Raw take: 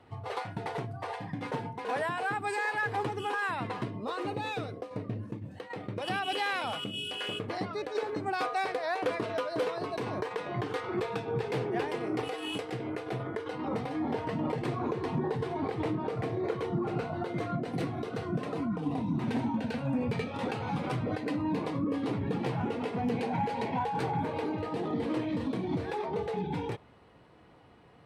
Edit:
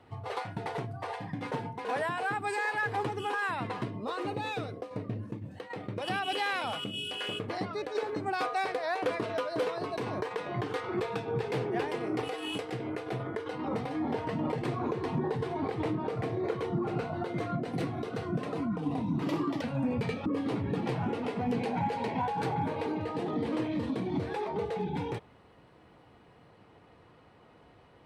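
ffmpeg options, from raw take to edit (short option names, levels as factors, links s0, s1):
-filter_complex "[0:a]asplit=4[s0][s1][s2][s3];[s0]atrim=end=19.224[s4];[s1]atrim=start=19.22:end=19.72,asetpts=PTS-STARTPTS,asetrate=55566,aresample=44100[s5];[s2]atrim=start=19.716:end=20.362[s6];[s3]atrim=start=21.828[s7];[s4][s5]acrossfade=d=0.004:c1=hsin:c2=hsin[s8];[s8][s6]acrossfade=d=0.004:c1=hsin:c2=hsin[s9];[s9][s7]acrossfade=d=0.004:c1=hsin:c2=hsin"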